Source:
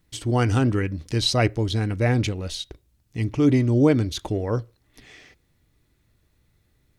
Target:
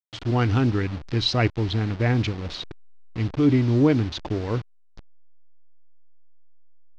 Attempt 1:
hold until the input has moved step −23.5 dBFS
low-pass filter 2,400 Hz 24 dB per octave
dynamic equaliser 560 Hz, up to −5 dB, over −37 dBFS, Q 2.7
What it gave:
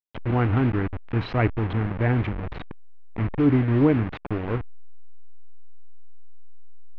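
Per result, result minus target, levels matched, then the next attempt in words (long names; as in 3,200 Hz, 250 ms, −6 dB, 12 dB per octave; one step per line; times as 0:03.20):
4,000 Hz band −14.0 dB; hold until the input has moved: distortion +10 dB
hold until the input has moved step −23.5 dBFS
low-pass filter 5,000 Hz 24 dB per octave
dynamic equaliser 560 Hz, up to −5 dB, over −37 dBFS, Q 2.7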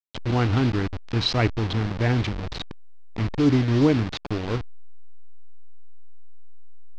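hold until the input has moved: distortion +10 dB
hold until the input has moved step −31.5 dBFS
low-pass filter 5,000 Hz 24 dB per octave
dynamic equaliser 560 Hz, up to −5 dB, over −37 dBFS, Q 2.7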